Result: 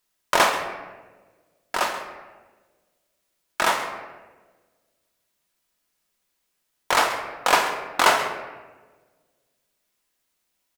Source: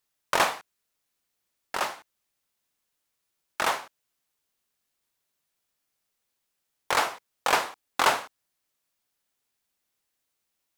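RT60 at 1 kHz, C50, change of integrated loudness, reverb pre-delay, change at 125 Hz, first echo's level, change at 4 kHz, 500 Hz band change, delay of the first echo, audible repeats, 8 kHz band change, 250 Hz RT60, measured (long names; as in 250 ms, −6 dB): 1.1 s, 7.0 dB, +4.5 dB, 3 ms, +4.0 dB, −15.0 dB, +5.0 dB, +6.0 dB, 133 ms, 1, +5.0 dB, 1.7 s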